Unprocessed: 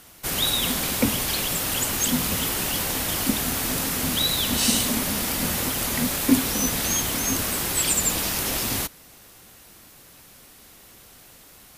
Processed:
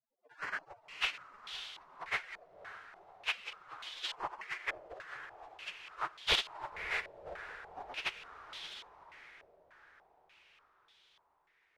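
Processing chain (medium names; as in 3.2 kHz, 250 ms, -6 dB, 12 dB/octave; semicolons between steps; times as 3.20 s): spectral gate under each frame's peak -25 dB weak; echo that smears into a reverb 548 ms, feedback 59%, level -10 dB; step-sequenced low-pass 3.4 Hz 600–3400 Hz; trim -1 dB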